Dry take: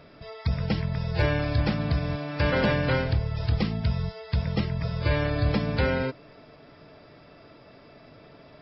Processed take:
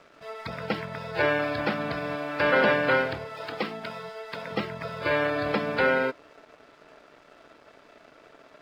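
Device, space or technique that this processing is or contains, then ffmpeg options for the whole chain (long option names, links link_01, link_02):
pocket radio on a weak battery: -filter_complex "[0:a]asettb=1/sr,asplit=3[link_01][link_02][link_03];[link_01]atrim=end=3.254[link_04];[link_02]atrim=start=3.25:end=4.51,asetpts=PTS-STARTPTS,afade=type=in:duration=0.004:curve=qsin,afade=type=out:start_time=1.256:duration=0.004:curve=qsin,highpass=230[link_05];[link_03]atrim=start=4.506[link_06];[link_04][link_05]acrossfade=duration=0.004:curve1=hsin:curve2=qsin[link_07];[link_07][link_06]acrossfade=duration=0.004:curve1=qsin:curve2=hsin,highpass=340,lowpass=3100,aeval=exprs='sgn(val(0))*max(abs(val(0))-0.0015,0)':channel_layout=same,equalizer=frequency=1400:width_type=o:width=0.28:gain=5,volume=4.5dB"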